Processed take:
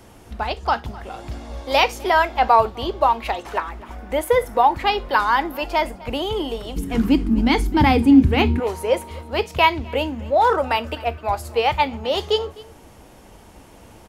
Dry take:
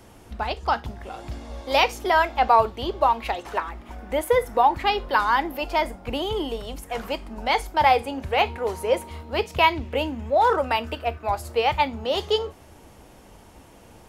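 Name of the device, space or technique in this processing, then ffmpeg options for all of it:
ducked delay: -filter_complex "[0:a]asplit=3[a][b][c];[b]adelay=255,volume=-7dB[d];[c]apad=whole_len=632391[e];[d][e]sidechaincompress=threshold=-37dB:ratio=4:attack=16:release=996[f];[a][f]amix=inputs=2:normalize=0,asettb=1/sr,asplit=3[g][h][i];[g]atrim=end=6.764[j];[h]atrim=start=6.76:end=8.6,asetpts=PTS-STARTPTS,afade=t=in:d=0.004:c=qsin,afade=t=out:st=1.836:d=0.004:c=qsin,lowshelf=f=410:t=q:w=3:g=12.5[k];[i]atrim=start=8.596[l];[j][k]acrossfade=d=0.004:c1=hsin:c2=qsin[m];[m][l]acrossfade=d=0.004:c1=qsin:c2=hsin,volume=2.5dB"

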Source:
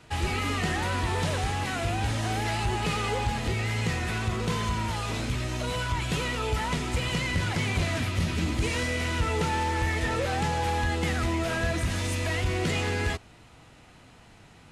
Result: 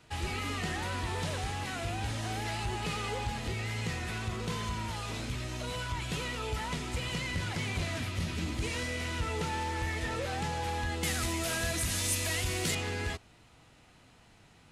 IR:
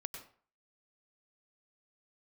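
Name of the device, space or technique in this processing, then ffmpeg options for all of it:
presence and air boost: -filter_complex "[0:a]asettb=1/sr,asplit=3[a][b][c];[a]atrim=end=11.034[d];[b]atrim=start=11.03:end=12.75,asetpts=PTS-STARTPTS,afade=t=in:d=0.004:c=qsin,afade=t=out:st=1.716:d=0.004:c=qsin,aemphasis=mode=production:type=75kf[e];[c]atrim=start=12.746[f];[d][e]acrossfade=d=0.004:c1=hsin:c2=qsin[g];[g][f]acrossfade=d=0.004:c1=qsin:c2=hsin,equalizer=f=4.2k:t=o:w=1.5:g=2,highshelf=f=9.7k:g=4,volume=-7dB"

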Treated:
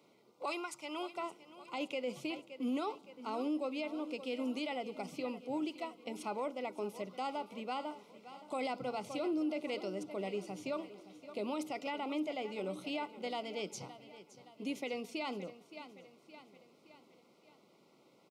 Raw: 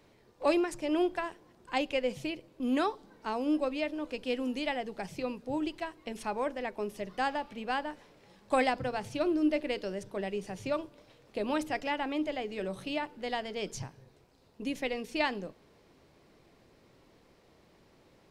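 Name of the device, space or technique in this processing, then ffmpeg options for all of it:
PA system with an anti-feedback notch: -filter_complex "[0:a]asettb=1/sr,asplit=3[a][b][c];[a]atrim=end=0.454[d];[b]atrim=start=0.45:end=1.16,asetpts=PTS-STARTPTS,afade=t=in:d=0.004:c=qsin,afade=t=out:st=0.706:d=0.004:c=qsin,lowshelf=f=710:t=q:w=1.5:g=-10[e];[c]atrim=start=1.156[f];[d][e]acrossfade=d=0.004:c1=hsin:c2=qsin[g];[g][f]acrossfade=d=0.004:c1=qsin:c2=hsin,highpass=f=160:w=0.5412,highpass=f=160:w=1.3066,asuperstop=centerf=1700:order=12:qfactor=3.6,aecho=1:1:568|1136|1704|2272:0.158|0.0792|0.0396|0.0198,alimiter=level_in=1.5dB:limit=-24dB:level=0:latency=1:release=14,volume=-1.5dB,volume=-3.5dB"

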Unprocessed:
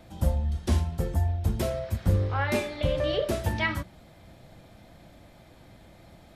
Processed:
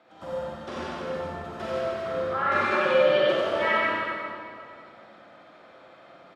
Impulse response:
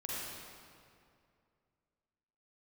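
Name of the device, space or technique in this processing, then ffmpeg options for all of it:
station announcement: -filter_complex "[0:a]highpass=400,lowpass=3.6k,equalizer=f=1.3k:t=o:w=0.34:g=10,aecho=1:1:145.8|242:0.282|0.316[a];[1:a]atrim=start_sample=2205[b];[a][b]afir=irnorm=-1:irlink=0,asettb=1/sr,asplit=3[c][d][e];[c]atrim=end=2.714[f];[d]atrim=start=2.71:end=3.32,asetpts=PTS-STARTPTS,afade=t=in:d=0.004:c=qsin,afade=t=out:st=0.606:d=0.004:c=qsin,aecho=1:1:5.5:0.99,atrim=end_sample=26901[g];[e]atrim=start=3.316[h];[f][g]acrossfade=d=0.004:c1=hsin:c2=qsin[i];[i][h]acrossfade=d=0.004:c1=qsin:c2=hsin,aecho=1:1:92:0.708"

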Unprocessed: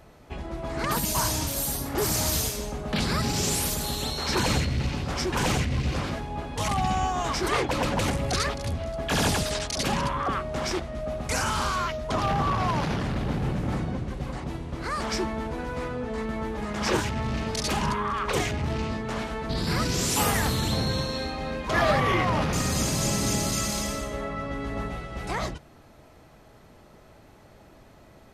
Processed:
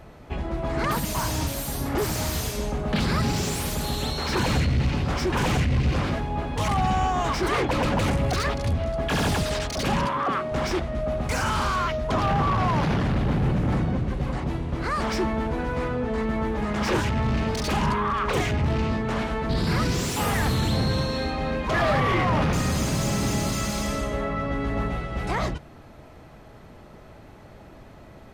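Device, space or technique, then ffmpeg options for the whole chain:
saturation between pre-emphasis and de-emphasis: -filter_complex "[0:a]highshelf=f=2.2k:g=9,asoftclip=type=tanh:threshold=-21.5dB,highshelf=f=2.2k:g=-9,asettb=1/sr,asplit=3[a][b][c];[a]atrim=end=10.054[d];[b]atrim=start=10.05:end=10.52,asetpts=PTS-STARTPTS,afade=t=in:d=0.004:c=qsin,afade=t=out:st=0.466:d=0.004:c=qsin,highpass=180[e];[c]atrim=start=10.516[f];[d][e]acrossfade=d=0.004:c1=hsin:c2=qsin[g];[g][f]acrossfade=d=0.004:c1=qsin:c2=hsin,bass=f=250:g=2,treble=f=4k:g=-6,volume=5dB"

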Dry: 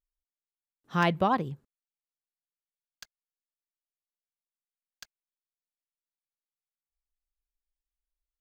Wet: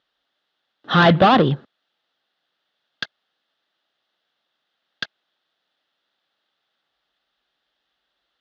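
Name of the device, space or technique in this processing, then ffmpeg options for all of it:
overdrive pedal into a guitar cabinet: -filter_complex "[0:a]asplit=2[a][b];[b]highpass=f=720:p=1,volume=30dB,asoftclip=type=tanh:threshold=-11.5dB[c];[a][c]amix=inputs=2:normalize=0,lowpass=f=2.2k:p=1,volume=-6dB,highpass=100,equalizer=f=430:t=q:w=4:g=-4,equalizer=f=1k:t=q:w=4:g=-8,equalizer=f=2.3k:t=q:w=4:g=-10,equalizer=f=3.5k:t=q:w=4:g=6,lowpass=f=4.1k:w=0.5412,lowpass=f=4.1k:w=1.3066,volume=8.5dB"

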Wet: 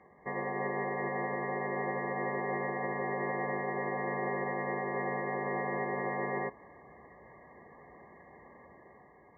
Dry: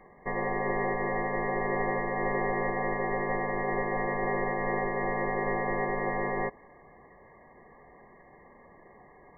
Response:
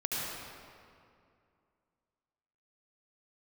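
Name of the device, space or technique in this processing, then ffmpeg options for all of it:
low-bitrate web radio: -af "highpass=f=58:w=0.5412,highpass=f=58:w=1.3066,dynaudnorm=f=140:g=9:m=4dB,alimiter=limit=-20.5dB:level=0:latency=1:release=170,volume=-4.5dB" -ar 16000 -c:a aac -b:a 24k

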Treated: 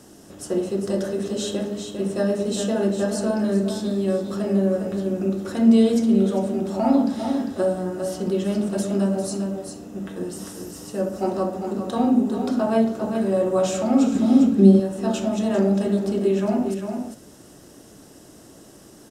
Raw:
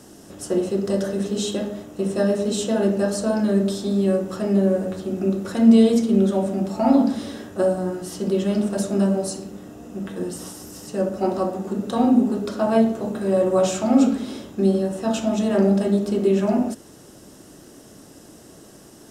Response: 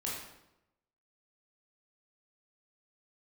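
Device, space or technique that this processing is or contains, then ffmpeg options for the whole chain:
ducked delay: -filter_complex "[0:a]asplit=3[a][b][c];[b]adelay=400,volume=-6.5dB[d];[c]apad=whole_len=860148[e];[d][e]sidechaincompress=threshold=-21dB:ratio=8:attack=16:release=213[f];[a][f]amix=inputs=2:normalize=0,asettb=1/sr,asplit=3[g][h][i];[g]atrim=end=14.154[j];[h]atrim=start=14.15:end=14.8,asetpts=PTS-STARTPTS,afade=t=in:d=0.004:c=qsin,afade=t=out:st=0.646:d=0.004:c=qsin,equalizer=f=200:t=o:w=1.9:g=10[k];[i]atrim=start=14.796[l];[j][k]acrossfade=d=0.004:c1=hsin:c2=qsin[m];[m][l]acrossfade=d=0.004:c1=qsin:c2=hsin,volume=-2dB"

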